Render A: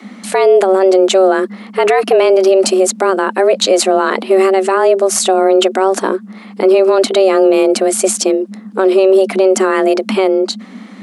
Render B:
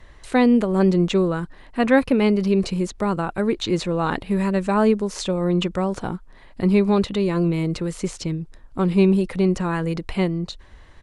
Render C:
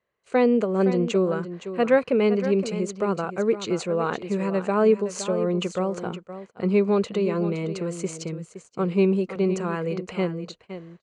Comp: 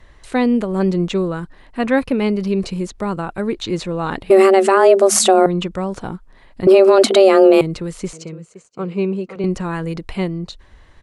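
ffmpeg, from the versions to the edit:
-filter_complex "[0:a]asplit=2[a][b];[1:a]asplit=4[c][d][e][f];[c]atrim=end=4.302[g];[a]atrim=start=4.298:end=5.462[h];[d]atrim=start=5.458:end=6.672[i];[b]atrim=start=6.668:end=7.612[j];[e]atrim=start=7.608:end=8.132[k];[2:a]atrim=start=8.128:end=9.442[l];[f]atrim=start=9.438[m];[g][h]acrossfade=d=0.004:c1=hsin:c2=hsin[n];[n][i]acrossfade=d=0.004:c1=hsin:c2=hsin[o];[o][j]acrossfade=d=0.004:c1=hsin:c2=hsin[p];[p][k]acrossfade=d=0.004:c1=hsin:c2=hsin[q];[q][l]acrossfade=d=0.004:c1=hsin:c2=hsin[r];[r][m]acrossfade=d=0.004:c1=hsin:c2=hsin"

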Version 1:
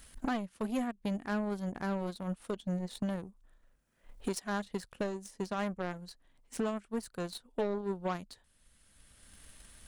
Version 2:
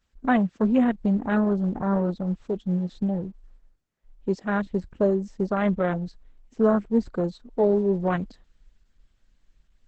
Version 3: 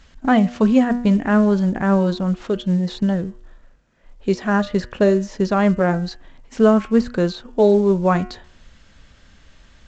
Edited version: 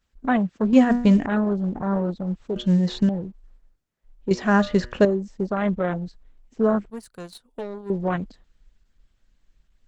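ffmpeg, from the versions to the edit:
-filter_complex "[2:a]asplit=3[a][b][c];[1:a]asplit=5[d][e][f][g][h];[d]atrim=end=0.732[i];[a]atrim=start=0.728:end=1.262[j];[e]atrim=start=1.258:end=2.562[k];[b]atrim=start=2.558:end=3.092[l];[f]atrim=start=3.088:end=4.312[m];[c]atrim=start=4.308:end=5.052[n];[g]atrim=start=5.048:end=6.902[o];[0:a]atrim=start=6.898:end=7.902[p];[h]atrim=start=7.898[q];[i][j]acrossfade=d=0.004:c1=hsin:c2=hsin[r];[r][k]acrossfade=d=0.004:c1=hsin:c2=hsin[s];[s][l]acrossfade=d=0.004:c1=hsin:c2=hsin[t];[t][m]acrossfade=d=0.004:c1=hsin:c2=hsin[u];[u][n]acrossfade=d=0.004:c1=hsin:c2=hsin[v];[v][o]acrossfade=d=0.004:c1=hsin:c2=hsin[w];[w][p]acrossfade=d=0.004:c1=hsin:c2=hsin[x];[x][q]acrossfade=d=0.004:c1=hsin:c2=hsin"

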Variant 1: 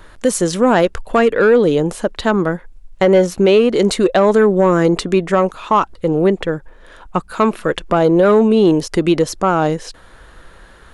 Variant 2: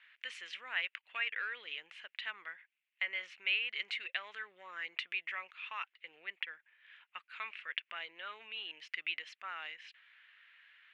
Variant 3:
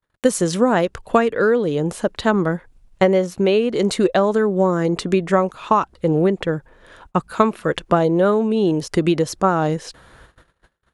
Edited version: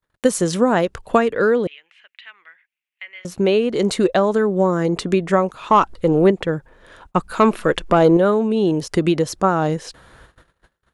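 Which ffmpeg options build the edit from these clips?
-filter_complex "[0:a]asplit=2[a][b];[2:a]asplit=4[c][d][e][f];[c]atrim=end=1.672[g];[1:a]atrim=start=1.668:end=3.252[h];[d]atrim=start=3.248:end=5.702[i];[a]atrim=start=5.698:end=6.312[j];[e]atrim=start=6.308:end=7.162[k];[b]atrim=start=7.158:end=8.172[l];[f]atrim=start=8.168[m];[g][h]acrossfade=d=0.004:c1=hsin:c2=hsin[n];[n][i]acrossfade=d=0.004:c1=hsin:c2=hsin[o];[o][j]acrossfade=d=0.004:c1=hsin:c2=hsin[p];[p][k]acrossfade=d=0.004:c1=hsin:c2=hsin[q];[q][l]acrossfade=d=0.004:c1=hsin:c2=hsin[r];[r][m]acrossfade=d=0.004:c1=hsin:c2=hsin"

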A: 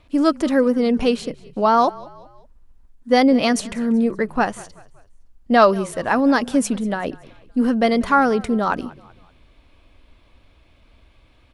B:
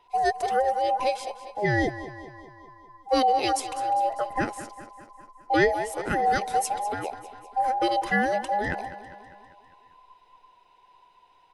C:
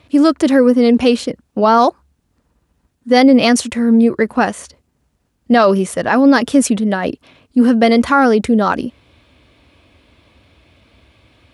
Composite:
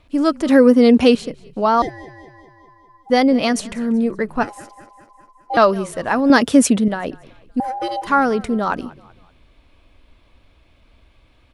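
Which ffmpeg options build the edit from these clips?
-filter_complex "[2:a]asplit=2[a][b];[1:a]asplit=3[c][d][e];[0:a]asplit=6[f][g][h][i][j][k];[f]atrim=end=0.492[l];[a]atrim=start=0.488:end=1.152[m];[g]atrim=start=1.148:end=1.822[n];[c]atrim=start=1.818:end=3.102[o];[h]atrim=start=3.098:end=4.432[p];[d]atrim=start=4.428:end=5.572[q];[i]atrim=start=5.568:end=6.302[r];[b]atrim=start=6.298:end=6.882[s];[j]atrim=start=6.878:end=7.602[t];[e]atrim=start=7.598:end=8.072[u];[k]atrim=start=8.068[v];[l][m]acrossfade=d=0.004:c1=hsin:c2=hsin[w];[w][n]acrossfade=d=0.004:c1=hsin:c2=hsin[x];[x][o]acrossfade=d=0.004:c1=hsin:c2=hsin[y];[y][p]acrossfade=d=0.004:c1=hsin:c2=hsin[z];[z][q]acrossfade=d=0.004:c1=hsin:c2=hsin[aa];[aa][r]acrossfade=d=0.004:c1=hsin:c2=hsin[ab];[ab][s]acrossfade=d=0.004:c1=hsin:c2=hsin[ac];[ac][t]acrossfade=d=0.004:c1=hsin:c2=hsin[ad];[ad][u]acrossfade=d=0.004:c1=hsin:c2=hsin[ae];[ae][v]acrossfade=d=0.004:c1=hsin:c2=hsin"

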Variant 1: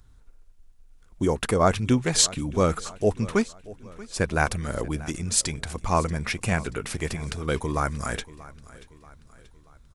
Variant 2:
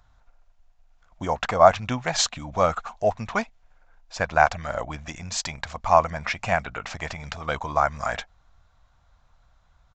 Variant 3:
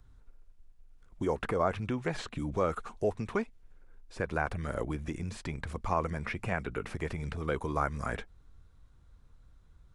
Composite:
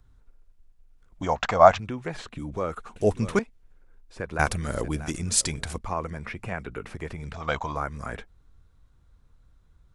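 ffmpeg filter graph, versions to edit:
-filter_complex "[1:a]asplit=2[a][b];[0:a]asplit=2[c][d];[2:a]asplit=5[e][f][g][h][i];[e]atrim=end=1.222[j];[a]atrim=start=1.218:end=1.782[k];[f]atrim=start=1.778:end=2.962[l];[c]atrim=start=2.958:end=3.392[m];[g]atrim=start=3.388:end=4.392[n];[d]atrim=start=4.388:end=5.782[o];[h]atrim=start=5.778:end=7.342[p];[b]atrim=start=7.338:end=7.762[q];[i]atrim=start=7.758[r];[j][k]acrossfade=d=0.004:c1=hsin:c2=hsin[s];[s][l]acrossfade=d=0.004:c1=hsin:c2=hsin[t];[t][m]acrossfade=d=0.004:c1=hsin:c2=hsin[u];[u][n]acrossfade=d=0.004:c1=hsin:c2=hsin[v];[v][o]acrossfade=d=0.004:c1=hsin:c2=hsin[w];[w][p]acrossfade=d=0.004:c1=hsin:c2=hsin[x];[x][q]acrossfade=d=0.004:c1=hsin:c2=hsin[y];[y][r]acrossfade=d=0.004:c1=hsin:c2=hsin"

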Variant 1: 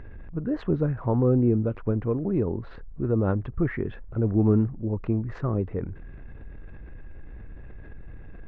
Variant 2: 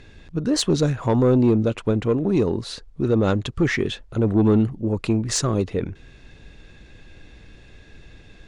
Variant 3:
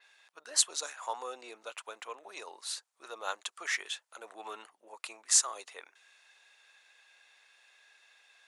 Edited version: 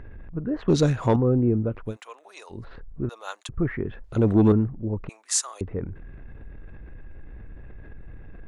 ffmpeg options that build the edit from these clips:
-filter_complex "[1:a]asplit=2[a][b];[2:a]asplit=3[c][d][e];[0:a]asplit=6[f][g][h][i][j][k];[f]atrim=end=0.682[l];[a]atrim=start=0.678:end=1.162[m];[g]atrim=start=1.158:end=1.97[n];[c]atrim=start=1.81:end=2.65[o];[h]atrim=start=2.49:end=3.092[p];[d]atrim=start=3.088:end=3.492[q];[i]atrim=start=3.488:end=4.042[r];[b]atrim=start=4.038:end=4.522[s];[j]atrim=start=4.518:end=5.092[t];[e]atrim=start=5.088:end=5.612[u];[k]atrim=start=5.608[v];[l][m]acrossfade=d=0.004:c1=hsin:c2=hsin[w];[w][n]acrossfade=d=0.004:c1=hsin:c2=hsin[x];[x][o]acrossfade=d=0.16:c1=tri:c2=tri[y];[y][p]acrossfade=d=0.16:c1=tri:c2=tri[z];[z][q]acrossfade=d=0.004:c1=hsin:c2=hsin[aa];[aa][r]acrossfade=d=0.004:c1=hsin:c2=hsin[ab];[ab][s]acrossfade=d=0.004:c1=hsin:c2=hsin[ac];[ac][t]acrossfade=d=0.004:c1=hsin:c2=hsin[ad];[ad][u]acrossfade=d=0.004:c1=hsin:c2=hsin[ae];[ae][v]acrossfade=d=0.004:c1=hsin:c2=hsin"

